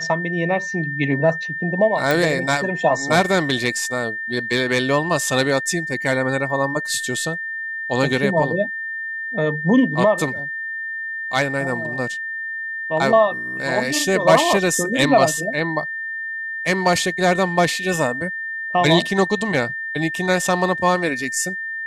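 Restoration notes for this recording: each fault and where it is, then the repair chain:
whine 1.8 kHz -25 dBFS
2.11 s: pop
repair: de-click; band-stop 1.8 kHz, Q 30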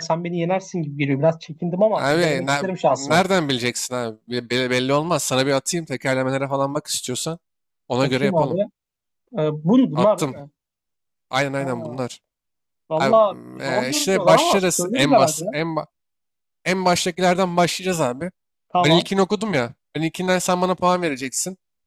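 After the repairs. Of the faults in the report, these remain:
nothing left

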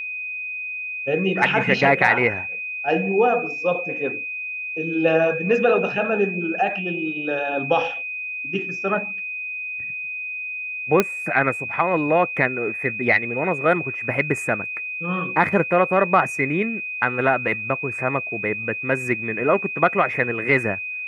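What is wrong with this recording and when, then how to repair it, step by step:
whine 2.5 kHz -27 dBFS
11.00 s: pop -3 dBFS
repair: de-click; band-stop 2.5 kHz, Q 30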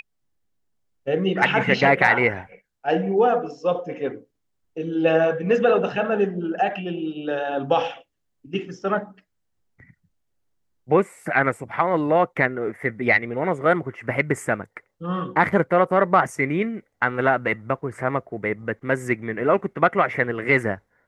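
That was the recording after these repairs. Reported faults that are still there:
nothing left

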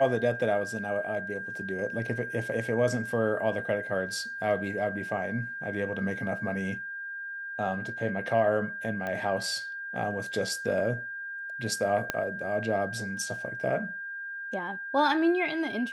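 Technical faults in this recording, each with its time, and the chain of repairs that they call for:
whine 1.6 kHz -35 dBFS
9.07 s: pop -21 dBFS
12.10 s: pop -12 dBFS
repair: de-click; band-stop 1.6 kHz, Q 30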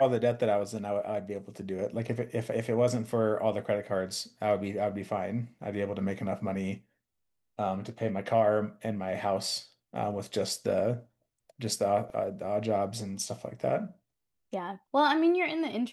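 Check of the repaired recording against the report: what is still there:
9.07 s: pop
12.10 s: pop

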